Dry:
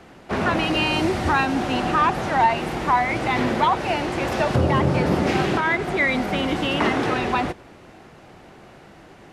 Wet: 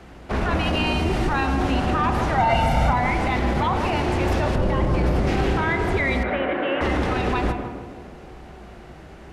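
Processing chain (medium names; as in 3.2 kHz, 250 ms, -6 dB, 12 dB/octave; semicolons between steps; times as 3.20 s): octave divider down 2 oct, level +4 dB; 6.23–6.81 s: cabinet simulation 420–2400 Hz, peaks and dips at 530 Hz +5 dB, 810 Hz -4 dB, 1.7 kHz +6 dB; peak limiter -15 dBFS, peak gain reduction 10 dB; 2.38–2.93 s: comb 1.4 ms, depth 88%; on a send: tape echo 156 ms, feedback 65%, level -4 dB, low-pass 1 kHz; on the sum: spring tank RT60 1.2 s, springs 33 ms, chirp 55 ms, DRR 9 dB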